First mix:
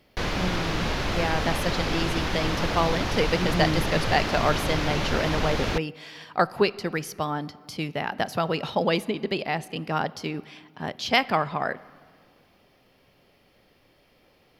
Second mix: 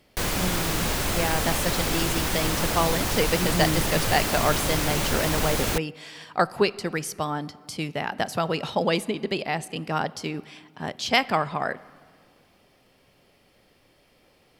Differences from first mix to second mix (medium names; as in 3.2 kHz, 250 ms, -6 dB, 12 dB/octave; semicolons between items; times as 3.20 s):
background: remove low-pass 5.4 kHz 12 dB/octave; master: add peaking EQ 8.3 kHz +11 dB 0.59 oct